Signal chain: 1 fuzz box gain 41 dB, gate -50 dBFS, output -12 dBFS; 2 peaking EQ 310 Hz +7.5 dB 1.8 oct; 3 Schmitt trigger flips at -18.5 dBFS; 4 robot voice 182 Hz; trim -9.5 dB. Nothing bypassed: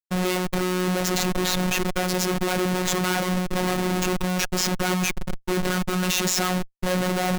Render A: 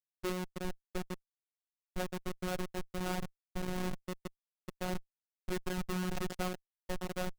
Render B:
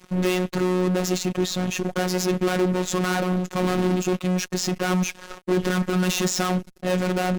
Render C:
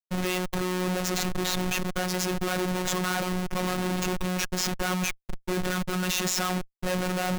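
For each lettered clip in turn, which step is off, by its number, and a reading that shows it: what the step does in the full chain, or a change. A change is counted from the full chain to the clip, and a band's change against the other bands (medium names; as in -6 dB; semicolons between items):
1, 8 kHz band -6.5 dB; 3, distortion -2 dB; 2, loudness change -4.0 LU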